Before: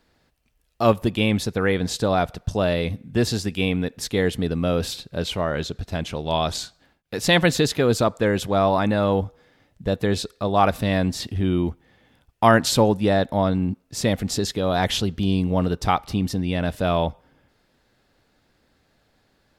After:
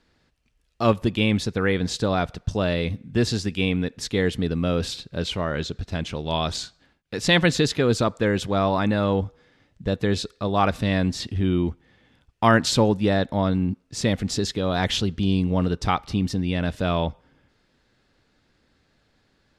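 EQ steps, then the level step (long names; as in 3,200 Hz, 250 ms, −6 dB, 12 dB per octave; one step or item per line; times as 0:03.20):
low-pass filter 7,700 Hz 12 dB per octave
parametric band 700 Hz −4.5 dB 0.97 octaves
0.0 dB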